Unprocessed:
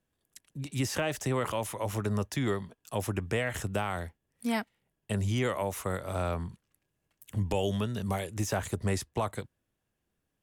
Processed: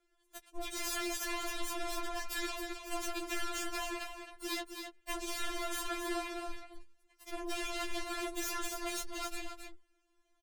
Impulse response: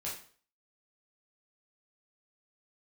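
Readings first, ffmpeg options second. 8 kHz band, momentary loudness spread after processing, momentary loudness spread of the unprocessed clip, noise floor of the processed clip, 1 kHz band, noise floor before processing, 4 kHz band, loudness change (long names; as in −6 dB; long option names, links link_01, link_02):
0.0 dB, 10 LU, 8 LU, −75 dBFS, −4.5 dB, −82 dBFS, +1.5 dB, −6.0 dB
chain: -filter_complex "[0:a]lowpass=7600,afftfilt=real='re*lt(hypot(re,im),0.112)':imag='im*lt(hypot(re,im),0.112)':win_size=1024:overlap=0.75,lowshelf=frequency=260:gain=5,bandreject=frequency=60:width_type=h:width=6,bandreject=frequency=120:width_type=h:width=6,bandreject=frequency=180:width_type=h:width=6,bandreject=frequency=240:width_type=h:width=6,bandreject=frequency=300:width_type=h:width=6,bandreject=frequency=360:width_type=h:width=6,acrossover=split=150[link_01][link_02];[link_02]acompressor=threshold=-39dB:ratio=10[link_03];[link_01][link_03]amix=inputs=2:normalize=0,aeval=exprs='0.0501*(cos(1*acos(clip(val(0)/0.0501,-1,1)))-cos(1*PI/2))+0.00316*(cos(2*acos(clip(val(0)/0.0501,-1,1)))-cos(2*PI/2))+0.00224*(cos(4*acos(clip(val(0)/0.0501,-1,1)))-cos(4*PI/2))+0.02*(cos(8*acos(clip(val(0)/0.0501,-1,1)))-cos(8*PI/2))':channel_layout=same,asoftclip=type=tanh:threshold=-34.5dB,afreqshift=-120,aecho=1:1:267:0.447,afftfilt=real='re*4*eq(mod(b,16),0)':imag='im*4*eq(mod(b,16),0)':win_size=2048:overlap=0.75,volume=8.5dB"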